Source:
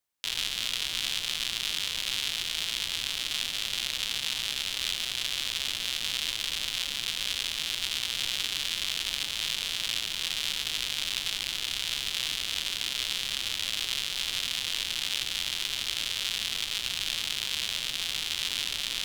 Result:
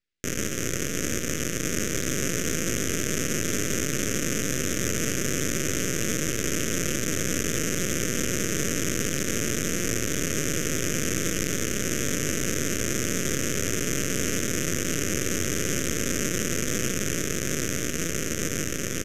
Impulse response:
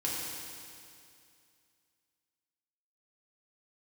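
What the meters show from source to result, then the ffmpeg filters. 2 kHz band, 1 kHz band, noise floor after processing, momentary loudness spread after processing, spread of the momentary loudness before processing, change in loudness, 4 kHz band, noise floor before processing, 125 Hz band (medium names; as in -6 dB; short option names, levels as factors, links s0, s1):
+3.5 dB, +5.5 dB, -29 dBFS, 2 LU, 1 LU, +2.5 dB, -8.0 dB, -35 dBFS, +21.0 dB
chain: -af "aemphasis=mode=reproduction:type=50kf,dynaudnorm=f=140:g=31:m=3.76,alimiter=limit=0.141:level=0:latency=1:release=85,adynamicsmooth=sensitivity=6.5:basefreq=4100,aeval=exprs='abs(val(0))':c=same,aresample=32000,aresample=44100,asuperstop=centerf=870:order=4:qfactor=0.81,volume=2.82"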